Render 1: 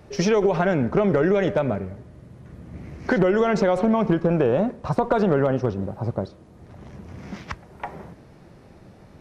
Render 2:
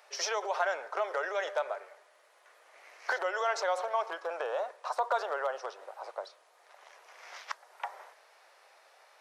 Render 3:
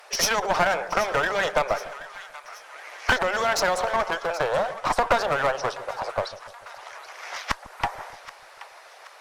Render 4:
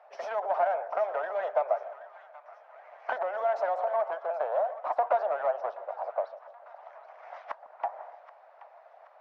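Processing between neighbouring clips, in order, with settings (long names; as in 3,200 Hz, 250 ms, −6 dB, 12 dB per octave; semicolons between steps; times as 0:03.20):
Bessel high-pass filter 1,000 Hz, order 8; dynamic equaliser 2,400 Hz, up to −8 dB, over −50 dBFS, Q 1.6
harmonic and percussive parts rebalanced percussive +8 dB; asymmetric clip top −32 dBFS; echo with a time of its own for lows and highs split 910 Hz, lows 147 ms, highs 777 ms, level −15 dB; level +7 dB
four-pole ladder band-pass 730 Hz, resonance 65%; level +1.5 dB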